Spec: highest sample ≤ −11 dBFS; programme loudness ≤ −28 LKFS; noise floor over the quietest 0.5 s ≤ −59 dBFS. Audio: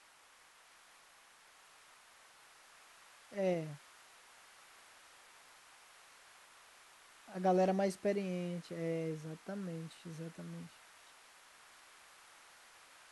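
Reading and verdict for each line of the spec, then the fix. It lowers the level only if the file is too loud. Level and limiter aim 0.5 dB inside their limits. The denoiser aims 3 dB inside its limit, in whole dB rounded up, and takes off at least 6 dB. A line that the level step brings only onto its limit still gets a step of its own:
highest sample −20.5 dBFS: in spec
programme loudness −38.5 LKFS: in spec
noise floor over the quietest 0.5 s −64 dBFS: in spec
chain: no processing needed

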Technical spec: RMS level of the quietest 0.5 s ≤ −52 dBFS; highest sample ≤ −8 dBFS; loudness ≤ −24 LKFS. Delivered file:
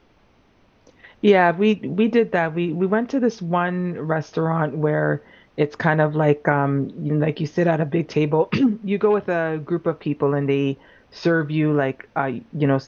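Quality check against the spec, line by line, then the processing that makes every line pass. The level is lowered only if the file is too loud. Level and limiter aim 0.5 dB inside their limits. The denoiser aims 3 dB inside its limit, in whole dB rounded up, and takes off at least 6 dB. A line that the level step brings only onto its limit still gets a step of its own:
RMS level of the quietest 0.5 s −57 dBFS: in spec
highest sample −4.0 dBFS: out of spec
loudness −21.0 LKFS: out of spec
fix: level −3.5 dB
brickwall limiter −8.5 dBFS

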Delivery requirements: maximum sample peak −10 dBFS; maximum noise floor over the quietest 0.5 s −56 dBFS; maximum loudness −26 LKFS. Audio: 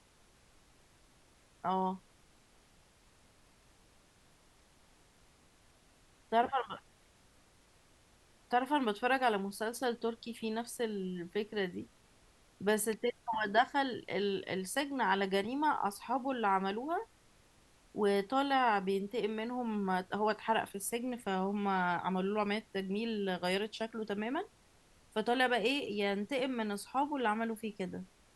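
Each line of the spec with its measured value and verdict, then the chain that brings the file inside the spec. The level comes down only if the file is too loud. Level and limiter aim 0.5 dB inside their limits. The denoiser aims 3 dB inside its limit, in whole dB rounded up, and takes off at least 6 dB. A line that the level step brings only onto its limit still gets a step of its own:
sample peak −16.0 dBFS: in spec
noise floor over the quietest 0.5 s −65 dBFS: in spec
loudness −34.5 LKFS: in spec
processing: no processing needed

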